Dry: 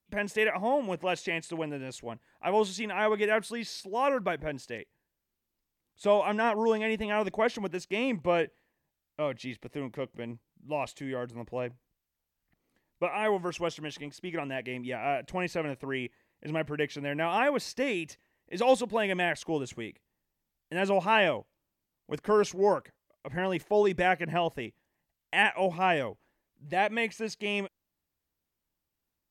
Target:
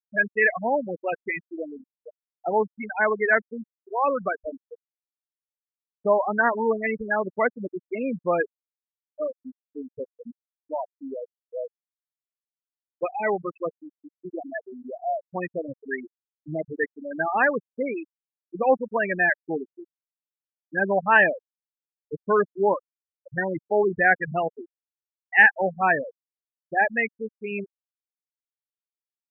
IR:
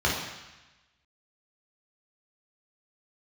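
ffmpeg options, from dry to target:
-af "afftfilt=real='re*gte(hypot(re,im),0.112)':imag='im*gte(hypot(re,im),0.112)':win_size=1024:overlap=0.75,lowpass=f=1700:t=q:w=3.9,volume=1.33"

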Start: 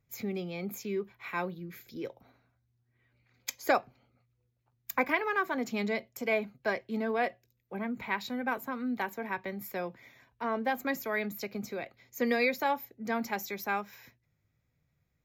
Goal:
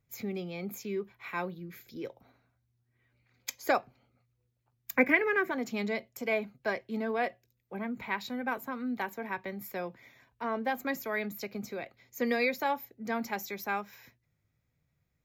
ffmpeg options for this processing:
-filter_complex "[0:a]asettb=1/sr,asplit=3[s0][s1][s2];[s0]atrim=end=4.964[s3];[s1]atrim=start=4.96:end=5.51,asetpts=PTS-STARTPTS,afade=t=in:d=0.004:c=qsin,afade=t=out:st=0.546:d=0.004:c=qsin,equalizer=f=125:t=o:w=1:g=4,equalizer=f=250:t=o:w=1:g=7,equalizer=f=500:t=o:w=1:g=6,equalizer=f=1000:t=o:w=1:g=-9,equalizer=f=2000:t=o:w=1:g=10,equalizer=f=4000:t=o:w=1:g=-7[s4];[s2]atrim=start=5.506[s5];[s3][s4]acrossfade=d=0.004:c1=hsin:c2=qsin[s6];[s6][s5]acrossfade=d=0.004:c1=qsin:c2=hsin,volume=0.891"

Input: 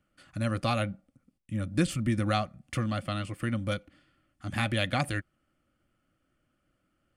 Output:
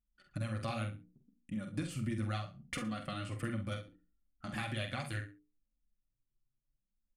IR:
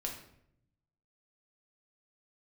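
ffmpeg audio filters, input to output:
-filter_complex "[0:a]anlmdn=0.00251,bandreject=f=60:t=h:w=6,bandreject=f=120:t=h:w=6,bandreject=f=180:t=h:w=6,bandreject=f=240:t=h:w=6,bandreject=f=300:t=h:w=6,bandreject=f=360:t=h:w=6,bandreject=f=420:t=h:w=6,bandreject=f=480:t=h:w=6,adynamicequalizer=threshold=0.00631:dfrequency=620:dqfactor=1.4:tfrequency=620:tqfactor=1.4:attack=5:release=100:ratio=0.375:range=1.5:mode=cutabove:tftype=bell,acompressor=threshold=0.0158:ratio=12,flanger=delay=4:depth=4.8:regen=-9:speed=0.7:shape=sinusoidal,asplit=2[s0][s1];[s1]adelay=46,volume=0.447[s2];[s0][s2]amix=inputs=2:normalize=0,asplit=2[s3][s4];[s4]aecho=0:1:67|134:0.211|0.0402[s5];[s3][s5]amix=inputs=2:normalize=0,volume=1.5"

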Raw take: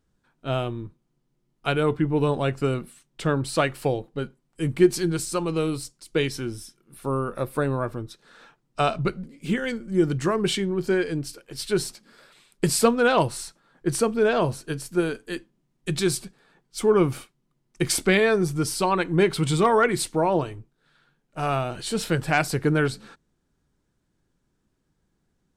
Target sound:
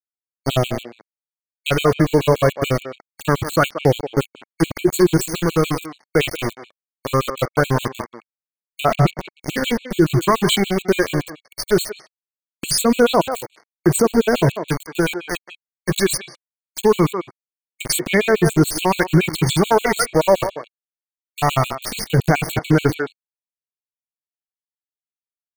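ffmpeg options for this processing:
-filter_complex "[0:a]asettb=1/sr,asplit=3[s0][s1][s2];[s0]atrim=end=2.574[s3];[s1]atrim=start=2.57:end=3.42,asetpts=PTS-STARTPTS,afade=t=in:d=0.004:c=qsin,afade=t=out:st=0.846:d=0.004:c=qsin,bandreject=f=60:t=h:w=6,bandreject=f=120:t=h:w=6,bandreject=f=180:t=h:w=6,bandreject=f=240:t=h:w=6[s4];[s2]atrim=start=3.416[s5];[s3][s4]acrossfade=d=0.004:c1=hsin:c2=qsin[s6];[s6][s5]acrossfade=d=0.004:c1=qsin:c2=hsin,aeval=exprs='val(0)*gte(abs(val(0)),0.0398)':c=same,aphaser=in_gain=1:out_gain=1:delay=1.8:decay=0.38:speed=0.22:type=sinusoidal,asplit=2[s7][s8];[s8]adelay=180,highpass=300,lowpass=3400,asoftclip=type=hard:threshold=0.266,volume=0.282[s9];[s7][s9]amix=inputs=2:normalize=0,alimiter=level_in=4.47:limit=0.891:release=50:level=0:latency=1,afftfilt=real='re*gt(sin(2*PI*7*pts/sr)*(1-2*mod(floor(b*sr/1024/2200),2)),0)':imag='im*gt(sin(2*PI*7*pts/sr)*(1-2*mod(floor(b*sr/1024/2200),2)),0)':win_size=1024:overlap=0.75,volume=0.708"

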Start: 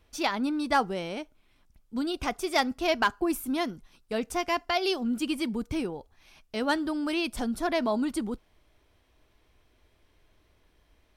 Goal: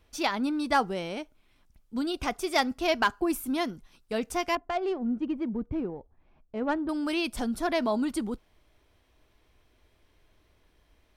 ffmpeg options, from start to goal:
-filter_complex "[0:a]asettb=1/sr,asplit=3[s0][s1][s2];[s0]atrim=end=4.554[s3];[s1]atrim=start=4.55:end=6.89,asetpts=PTS-STARTPTS,afade=t=in:d=0.004:c=qsin,afade=t=out:st=2.336:d=0.004:c=qsin,adynamicsmooth=sensitivity=0.5:basefreq=890[s4];[s2]atrim=start=6.886[s5];[s3][s4]acrossfade=d=0.004:c1=hsin:c2=qsin[s6];[s6][s5]acrossfade=d=0.004:c1=qsin:c2=hsin"

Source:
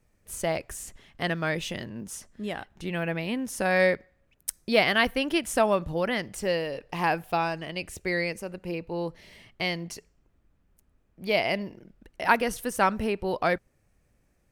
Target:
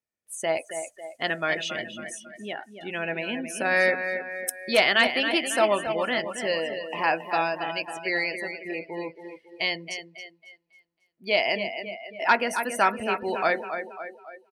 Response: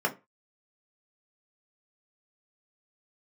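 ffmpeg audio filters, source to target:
-filter_complex "[0:a]asplit=2[s0][s1];[1:a]atrim=start_sample=2205,asetrate=42777,aresample=44100[s2];[s1][s2]afir=irnorm=-1:irlink=0,volume=0.0944[s3];[s0][s3]amix=inputs=2:normalize=0,volume=5.01,asoftclip=hard,volume=0.2,highpass=f=650:p=1,aecho=1:1:274|548|822|1096|1370|1644|1918:0.398|0.223|0.125|0.0699|0.0392|0.0219|0.0123,afftdn=nr=22:nf=-40,volume=1.68"

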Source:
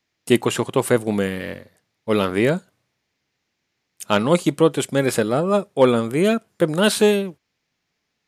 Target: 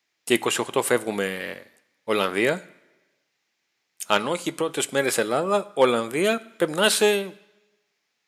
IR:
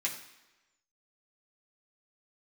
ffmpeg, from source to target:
-filter_complex "[0:a]highpass=f=570:p=1,asettb=1/sr,asplit=3[s0][s1][s2];[s0]atrim=end=4.174[s3];[s1]atrim=start=4.17:end=4.69,asetpts=PTS-STARTPTS,afade=t=in:d=0.004:c=qsin,afade=t=out:st=0.516:d=0.004:c=qsin,acompressor=threshold=0.0708:ratio=4[s4];[s2]atrim=start=4.686[s5];[s3][s4]acrossfade=d=0.004:c1=hsin:c2=qsin[s6];[s6][s5]acrossfade=d=0.004:c1=qsin:c2=hsin,asplit=2[s7][s8];[1:a]atrim=start_sample=2205,asetrate=42777,aresample=44100[s9];[s8][s9]afir=irnorm=-1:irlink=0,volume=0.178[s10];[s7][s10]amix=inputs=2:normalize=0"

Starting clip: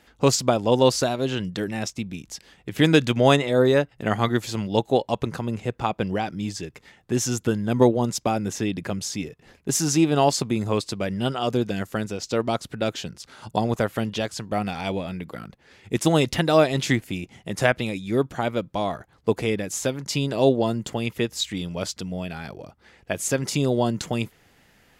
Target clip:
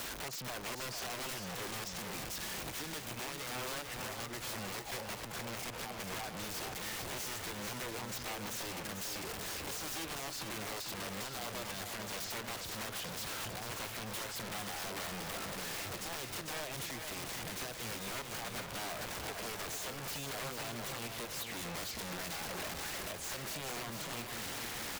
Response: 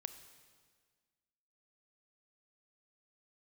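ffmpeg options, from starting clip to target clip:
-filter_complex "[0:a]aeval=exprs='val(0)+0.5*0.0473*sgn(val(0))':c=same,acrossover=split=480 4900:gain=0.2 1 0.2[s0][s1][s2];[s0][s1][s2]amix=inputs=3:normalize=0,acompressor=threshold=0.0355:ratio=2,alimiter=limit=0.0794:level=0:latency=1:release=260,acrossover=split=100|460|7400[s3][s4][s5][s6];[s3]acompressor=threshold=0.00141:ratio=4[s7];[s4]acompressor=threshold=0.00282:ratio=4[s8];[s5]acompressor=threshold=0.00447:ratio=4[s9];[s6]acompressor=threshold=0.00178:ratio=4[s10];[s7][s8][s9][s10]amix=inputs=4:normalize=0,aeval=exprs='(mod(100*val(0)+1,2)-1)/100':c=same,asplit=2[s11][s12];[s12]aecho=0:1:446|892|1338|1784|2230|2676:0.501|0.241|0.115|0.0554|0.0266|0.0128[s13];[s11][s13]amix=inputs=2:normalize=0,volume=1.58"

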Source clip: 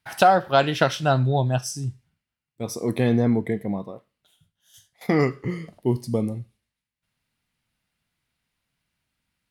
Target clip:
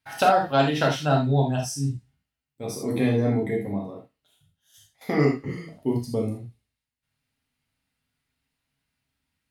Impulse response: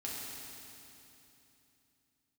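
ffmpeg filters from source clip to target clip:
-filter_complex "[0:a]asettb=1/sr,asplit=3[s0][s1][s2];[s0]atrim=end=1.574[s3];[s1]atrim=start=1.57:end=3.67,asetpts=PTS-STARTPTS,afade=t=in:d=0.004:c=qsin,afade=t=out:st=2.096:d=0.004:c=qsin,asplit=2[s4][s5];[s5]adelay=15,volume=0.447[s6];[s4][s6]amix=inputs=2:normalize=0,atrim=end_sample=92610[s7];[s2]atrim=start=3.666[s8];[s3][s7]acrossfade=d=0.004:c1=hsin:c2=qsin[s9];[s9][s8]acrossfade=d=0.004:c1=qsin:c2=hsin[s10];[1:a]atrim=start_sample=2205,atrim=end_sample=3969[s11];[s10][s11]afir=irnorm=-1:irlink=0"

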